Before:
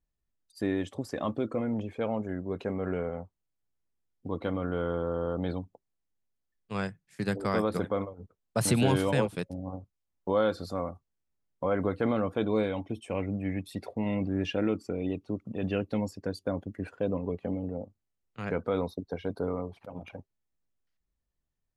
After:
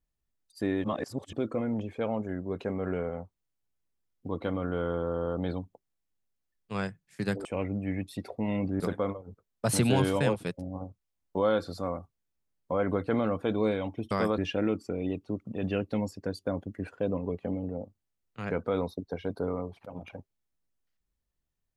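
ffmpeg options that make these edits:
-filter_complex "[0:a]asplit=7[s0][s1][s2][s3][s4][s5][s6];[s0]atrim=end=0.842[s7];[s1]atrim=start=0.838:end=1.332,asetpts=PTS-STARTPTS,areverse[s8];[s2]atrim=start=1.328:end=7.452[s9];[s3]atrim=start=13.028:end=14.382[s10];[s4]atrim=start=7.718:end=13.032[s11];[s5]atrim=start=7.448:end=7.722[s12];[s6]atrim=start=14.378[s13];[s7][s8]acrossfade=d=0.004:c1=hsin:c2=hsin[s14];[s14][s9]acrossfade=d=0.004:c1=hsin:c2=hsin[s15];[s15][s10]acrossfade=d=0.004:c1=hsin:c2=hsin[s16];[s16][s11]acrossfade=d=0.004:c1=hsin:c2=hsin[s17];[s17][s12]acrossfade=d=0.004:c1=hsin:c2=hsin[s18];[s18][s13]acrossfade=d=0.004:c1=hsin:c2=hsin"

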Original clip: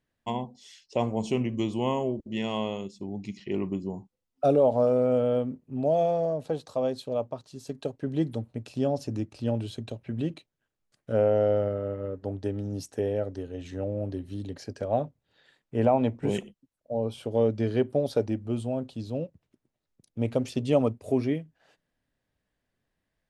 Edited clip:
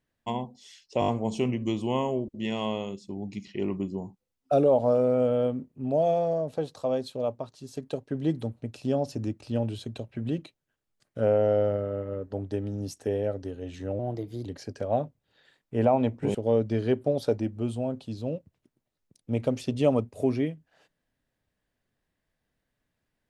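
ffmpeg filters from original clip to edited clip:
-filter_complex "[0:a]asplit=8[s0][s1][s2][s3][s4][s5][s6][s7];[s0]atrim=end=1.022[s8];[s1]atrim=start=0.998:end=1.022[s9];[s2]atrim=start=0.998:end=1.022[s10];[s3]atrim=start=0.998:end=1.022[s11];[s4]atrim=start=0.998:end=13.914[s12];[s5]atrim=start=13.91:end=14.46,asetpts=PTS-STARTPTS,asetrate=52038,aresample=44100,atrim=end_sample=20555,asetpts=PTS-STARTPTS[s13];[s6]atrim=start=14.456:end=16.352[s14];[s7]atrim=start=17.228[s15];[s8][s9]acrossfade=d=0.004:c1=hsin:c2=hsin[s16];[s16][s10]acrossfade=d=0.004:c1=hsin:c2=hsin[s17];[s17][s11]acrossfade=d=0.004:c1=hsin:c2=hsin[s18];[s18][s12]acrossfade=d=0.004:c1=hsin:c2=hsin[s19];[s19][s13]acrossfade=d=0.004:c1=hsin:c2=hsin[s20];[s20][s14]acrossfade=d=0.004:c1=hsin:c2=hsin[s21];[s21][s15]acrossfade=d=0.004:c1=hsin:c2=hsin"

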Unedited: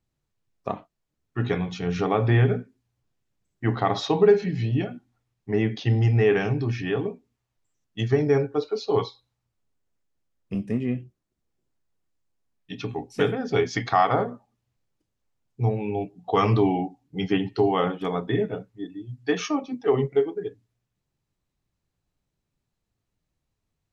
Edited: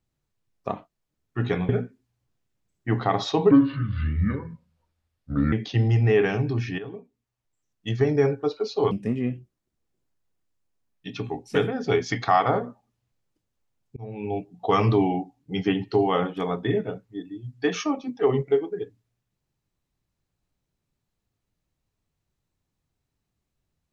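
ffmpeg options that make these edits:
-filter_complex "[0:a]asplit=7[s0][s1][s2][s3][s4][s5][s6];[s0]atrim=end=1.692[s7];[s1]atrim=start=2.448:end=4.274[s8];[s2]atrim=start=4.27:end=5.64,asetpts=PTS-STARTPTS,asetrate=29988,aresample=44100[s9];[s3]atrim=start=5.636:end=6.9,asetpts=PTS-STARTPTS,afade=t=out:st=1.26:d=0.004:c=hsin:silence=0.237137[s10];[s4]atrim=start=6.9:end=9.032,asetpts=PTS-STARTPTS,afade=t=in:d=1.32:silence=0.237137[s11];[s5]atrim=start=10.558:end=15.61,asetpts=PTS-STARTPTS,afade=t=out:st=5.048:d=0.004:c=hsin[s12];[s6]atrim=start=15.61,asetpts=PTS-STARTPTS,afade=t=in:d=0.39[s13];[s7][s8]acrossfade=d=0.004:c1=hsin:c2=hsin[s14];[s14][s9]acrossfade=d=0.004:c1=hsin:c2=hsin[s15];[s10][s11]concat=n=2:v=0:a=1[s16];[s15][s16]acrossfade=d=0.004:c1=hsin:c2=hsin[s17];[s12][s13]concat=n=2:v=0:a=1[s18];[s17][s18]acrossfade=d=0.004:c1=hsin:c2=hsin"

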